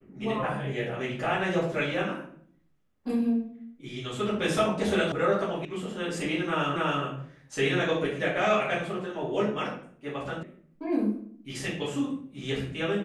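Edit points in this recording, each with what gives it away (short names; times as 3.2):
5.12 sound cut off
5.65 sound cut off
6.76 repeat of the last 0.28 s
10.43 sound cut off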